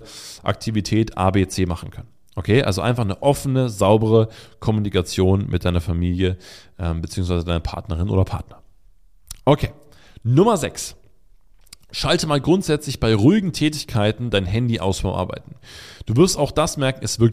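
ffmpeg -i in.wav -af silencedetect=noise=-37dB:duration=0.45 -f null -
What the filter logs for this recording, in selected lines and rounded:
silence_start: 8.57
silence_end: 9.27 | silence_duration: 0.70
silence_start: 10.94
silence_end: 11.67 | silence_duration: 0.73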